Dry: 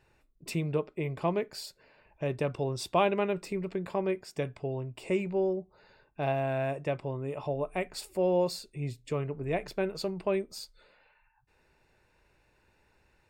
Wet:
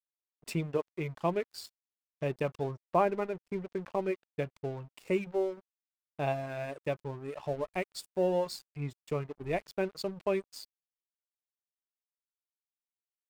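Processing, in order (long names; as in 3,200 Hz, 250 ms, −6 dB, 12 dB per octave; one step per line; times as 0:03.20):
0:02.75–0:04.48: low-pass filter 1,700 Hz → 3,500 Hz 24 dB per octave
reverb reduction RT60 1.4 s
dead-zone distortion −48.5 dBFS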